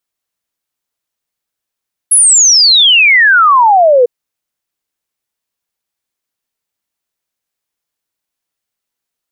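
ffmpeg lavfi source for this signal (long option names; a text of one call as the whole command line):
ffmpeg -f lavfi -i "aevalsrc='0.668*clip(min(t,1.95-t)/0.01,0,1)*sin(2*PI*11000*1.95/log(470/11000)*(exp(log(470/11000)*t/1.95)-1))':duration=1.95:sample_rate=44100" out.wav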